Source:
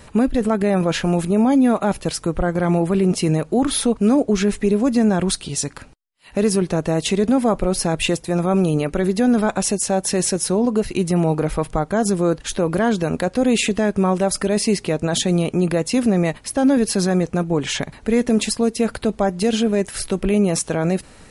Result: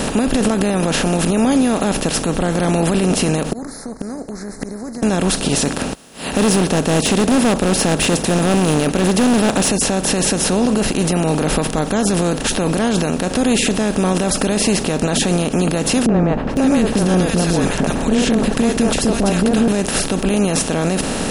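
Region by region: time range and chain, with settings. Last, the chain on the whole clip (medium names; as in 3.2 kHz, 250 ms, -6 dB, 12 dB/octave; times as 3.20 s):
3.51–5.03 s: Chebyshev band-stop 2.1–4.2 kHz, order 5 + inverted gate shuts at -16 dBFS, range -42 dB
5.65–9.69 s: high-pass 57 Hz + hard clipper -15.5 dBFS
16.06–19.68 s: tilt EQ -2 dB/octave + upward compressor, threshold -31 dBFS + three bands offset in time lows, mids, highs 30/510 ms, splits 430/1400 Hz
whole clip: spectral levelling over time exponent 0.4; peak limiter -6.5 dBFS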